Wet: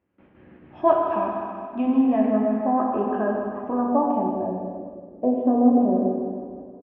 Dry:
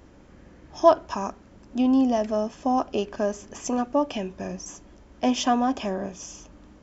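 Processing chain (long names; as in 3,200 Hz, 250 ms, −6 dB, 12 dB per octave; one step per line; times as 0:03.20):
noise gate with hold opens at −40 dBFS
repeating echo 157 ms, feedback 52%, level −9 dB
dense smooth reverb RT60 2 s, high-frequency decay 0.9×, DRR −0.5 dB
low-pass filter sweep 2,700 Hz → 510 Hz, 0:02.13–0:05.22
0:00.81–0:03.14: parametric band 3,000 Hz −9.5 dB 0.28 octaves
high-pass filter 100 Hz 12 dB per octave
high-frequency loss of the air 490 metres
level −1.5 dB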